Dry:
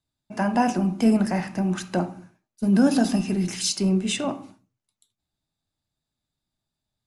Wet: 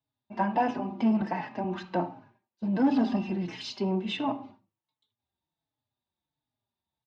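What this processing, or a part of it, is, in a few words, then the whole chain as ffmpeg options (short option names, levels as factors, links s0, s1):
barber-pole flanger into a guitar amplifier: -filter_complex "[0:a]asettb=1/sr,asplit=3[s0][s1][s2];[s0]atrim=end=1.214[s3];[s1]atrim=start=1.21:end=1.64,asetpts=PTS-STARTPTS,afade=t=in:d=0.004:c=qsin,afade=t=out:st=0.426:d=0.004:c=qsin,highpass=160[s4];[s2]atrim=start=1.636[s5];[s3][s4]acrossfade=d=0.004:c1=hsin:c2=qsin[s6];[s6][s5]acrossfade=d=0.004:c1=qsin:c2=hsin,asplit=2[s7][s8];[s8]adelay=4.2,afreqshift=-1.4[s9];[s7][s9]amix=inputs=2:normalize=1,asoftclip=type=tanh:threshold=0.158,highpass=90,equalizer=f=180:t=q:w=4:g=-7,equalizer=f=920:t=q:w=4:g=8,equalizer=f=1400:t=q:w=4:g=-5,equalizer=f=2300:t=q:w=4:g=-3,lowpass=f=3700:w=0.5412,lowpass=f=3700:w=1.3066"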